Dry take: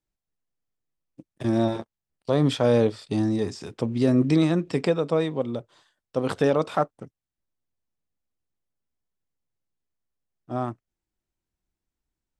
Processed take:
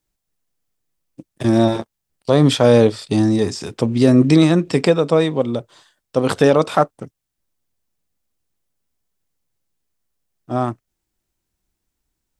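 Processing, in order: treble shelf 4.8 kHz +6 dB; trim +8 dB

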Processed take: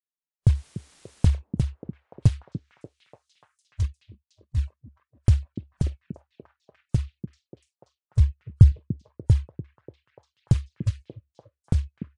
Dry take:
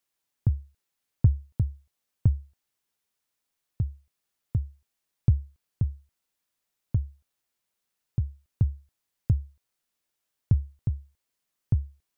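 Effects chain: block-companded coder 5-bit; spectral noise reduction 29 dB; 3.82–4.59 s: transient shaper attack -11 dB, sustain -7 dB; 8.20–8.72 s: bass shelf 290 Hz +7.5 dB; in parallel at -1 dB: compression, threshold -28 dBFS, peak gain reduction 15.5 dB; on the sum: flange 0.23 Hz, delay 0.4 ms, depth 6.5 ms, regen -35%; 0.55–1.26 s: word length cut 10-bit, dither triangular; resampled via 22.05 kHz; on a send: repeats whose band climbs or falls 293 ms, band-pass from 260 Hz, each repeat 0.7 oct, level -2 dB; on the sum: trim +5.5 dB

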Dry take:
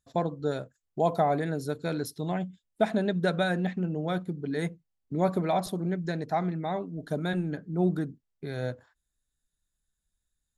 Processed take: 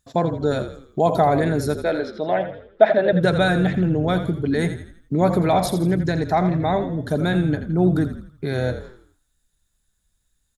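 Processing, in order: in parallel at +2 dB: peak limiter -24.5 dBFS, peak gain reduction 11.5 dB; 1.75–3.13 s: on the sum: cabinet simulation 370–3700 Hz, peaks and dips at 610 Hz +10 dB, 1.1 kHz -4 dB, 1.8 kHz +5 dB, 2.5 kHz -3 dB; frequency-shifting echo 83 ms, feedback 44%, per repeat -42 Hz, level -10 dB; trim +4 dB

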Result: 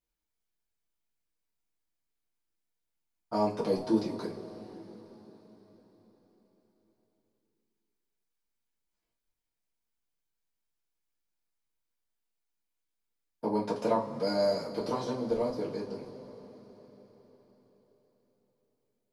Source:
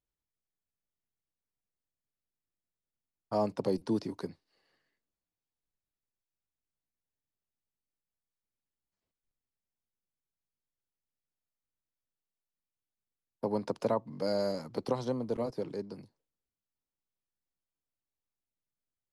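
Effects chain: two-slope reverb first 0.24 s, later 4.7 s, from -22 dB, DRR -7 dB; trim -4 dB

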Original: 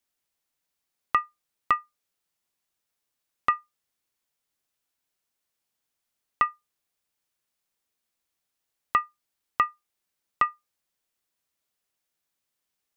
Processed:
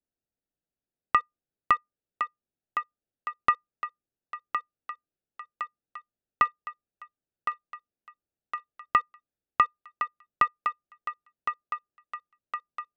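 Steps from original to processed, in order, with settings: local Wiener filter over 41 samples; thinning echo 1062 ms, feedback 63%, high-pass 380 Hz, level -7 dB; trim +1 dB

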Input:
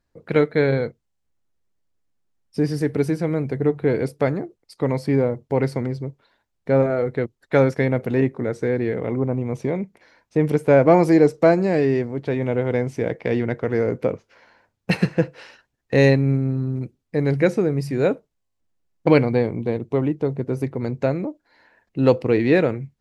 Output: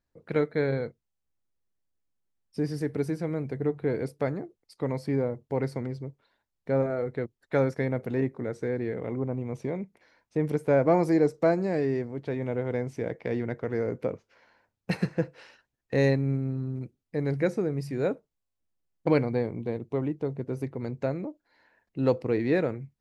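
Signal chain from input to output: dynamic bell 2.9 kHz, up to -6 dB, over -45 dBFS, Q 2.6; trim -8 dB

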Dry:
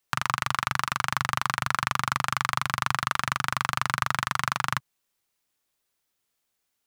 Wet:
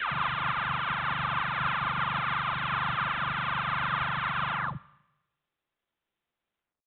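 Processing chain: delay that grows with frequency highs early, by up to 572 ms; Schroeder reverb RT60 0.97 s, combs from 27 ms, DRR 19.5 dB; IMA ADPCM 32 kbps 8 kHz

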